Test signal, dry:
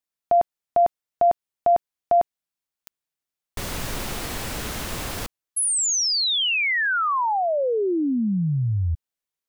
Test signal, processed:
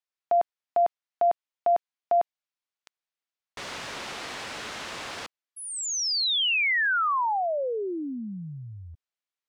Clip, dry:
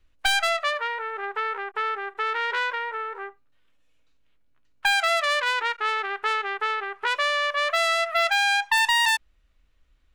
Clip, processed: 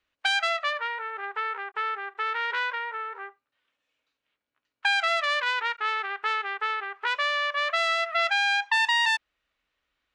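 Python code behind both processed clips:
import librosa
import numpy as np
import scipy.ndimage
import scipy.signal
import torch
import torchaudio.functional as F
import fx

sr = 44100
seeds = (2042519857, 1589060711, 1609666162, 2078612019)

y = fx.highpass(x, sr, hz=850.0, slope=6)
y = fx.air_absorb(y, sr, metres=98.0)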